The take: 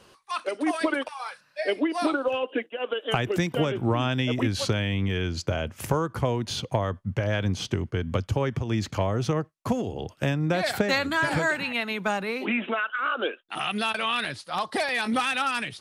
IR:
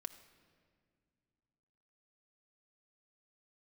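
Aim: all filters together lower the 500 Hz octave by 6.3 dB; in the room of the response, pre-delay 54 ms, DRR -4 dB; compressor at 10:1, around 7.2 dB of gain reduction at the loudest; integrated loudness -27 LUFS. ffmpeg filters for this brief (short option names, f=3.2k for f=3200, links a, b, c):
-filter_complex "[0:a]equalizer=f=500:t=o:g=-8,acompressor=threshold=-29dB:ratio=10,asplit=2[a][b];[1:a]atrim=start_sample=2205,adelay=54[c];[b][c]afir=irnorm=-1:irlink=0,volume=8dB[d];[a][d]amix=inputs=2:normalize=0,volume=1.5dB"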